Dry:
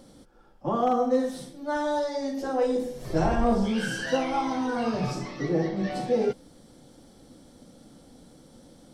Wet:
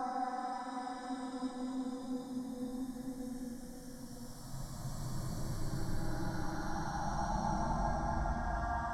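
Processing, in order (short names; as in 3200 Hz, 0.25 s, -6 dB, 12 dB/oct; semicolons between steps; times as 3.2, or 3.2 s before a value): random spectral dropouts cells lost 35%; compressor, threshold -31 dBFS, peak gain reduction 12 dB; fixed phaser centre 1100 Hz, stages 4; pre-echo 80 ms -14 dB; Paulstretch 11×, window 0.25 s, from 2.57; gain +2 dB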